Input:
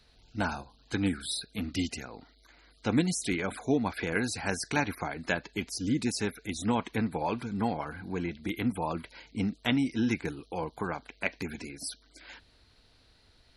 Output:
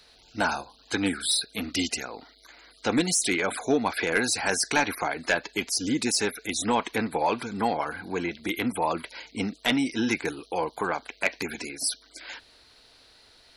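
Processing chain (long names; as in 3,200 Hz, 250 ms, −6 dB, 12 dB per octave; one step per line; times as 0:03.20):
bass and treble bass −13 dB, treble +3 dB
soft clipping −20 dBFS, distortion −18 dB
level +8 dB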